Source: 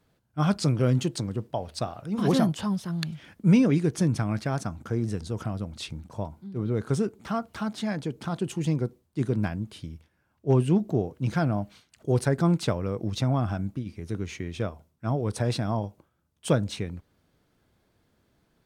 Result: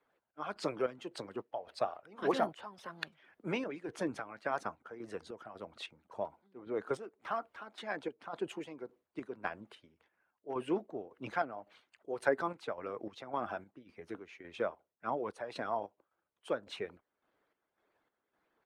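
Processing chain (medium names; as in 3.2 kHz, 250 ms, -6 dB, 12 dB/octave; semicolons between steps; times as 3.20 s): coarse spectral quantiser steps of 15 dB; three-band isolator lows -24 dB, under 360 Hz, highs -17 dB, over 2.8 kHz; harmonic-percussive split harmonic -9 dB; square tremolo 1.8 Hz, depth 60%, duty 55%; trim +1 dB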